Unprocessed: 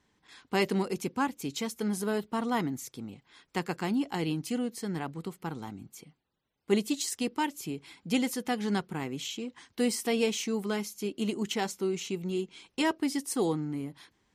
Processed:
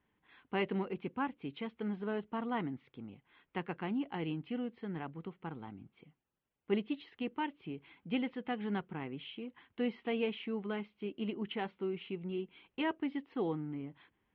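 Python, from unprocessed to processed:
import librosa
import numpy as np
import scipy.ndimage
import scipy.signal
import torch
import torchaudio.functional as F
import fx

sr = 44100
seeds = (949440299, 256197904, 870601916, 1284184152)

y = scipy.signal.sosfilt(scipy.signal.butter(8, 3200.0, 'lowpass', fs=sr, output='sos'), x)
y = F.gain(torch.from_numpy(y), -6.5).numpy()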